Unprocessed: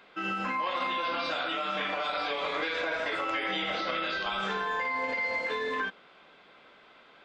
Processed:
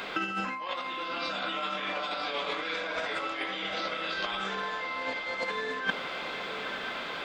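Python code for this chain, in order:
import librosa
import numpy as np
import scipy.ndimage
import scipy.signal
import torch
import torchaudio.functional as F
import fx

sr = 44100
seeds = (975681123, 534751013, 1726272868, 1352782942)

y = fx.high_shelf(x, sr, hz=4400.0, db=6.5)
y = fx.over_compress(y, sr, threshold_db=-38.0, ratio=-0.5)
y = fx.echo_diffused(y, sr, ms=954, feedback_pct=55, wet_db=-8.5)
y = y * 10.0 ** (7.5 / 20.0)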